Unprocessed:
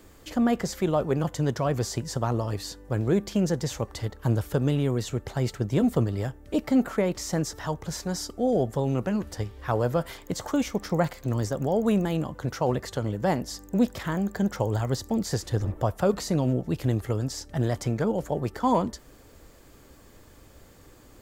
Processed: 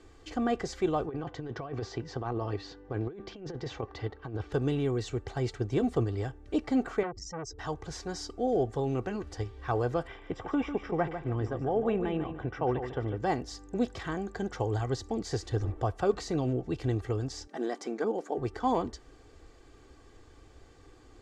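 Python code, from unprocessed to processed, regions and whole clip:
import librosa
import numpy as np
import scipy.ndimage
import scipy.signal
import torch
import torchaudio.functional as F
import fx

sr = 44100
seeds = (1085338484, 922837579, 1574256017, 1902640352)

y = fx.chain(x, sr, fx.highpass(hz=140.0, slope=6),
    fx.over_compress(threshold_db=-29.0, ratio=-0.5),
    fx.air_absorb(metres=190.0), at=(1.06, 4.52))
y = fx.chain(y, sr, fx.spec_expand(power=2.5),
    fx.transformer_sat(knee_hz=890.0), at=(7.03, 7.59))
y = fx.chain(y, sr, fx.savgol(points=25),
    fx.echo_feedback(ms=147, feedback_pct=26, wet_db=-9.5), at=(10.07, 13.18))
y = fx.chain(y, sr, fx.brickwall_highpass(low_hz=180.0),
    fx.peak_eq(hz=2900.0, db=-4.0, octaves=0.61), at=(17.47, 18.38))
y = scipy.signal.sosfilt(scipy.signal.bessel(4, 5700.0, 'lowpass', norm='mag', fs=sr, output='sos'), y)
y = y + 0.55 * np.pad(y, (int(2.6 * sr / 1000.0), 0))[:len(y)]
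y = y * librosa.db_to_amplitude(-4.5)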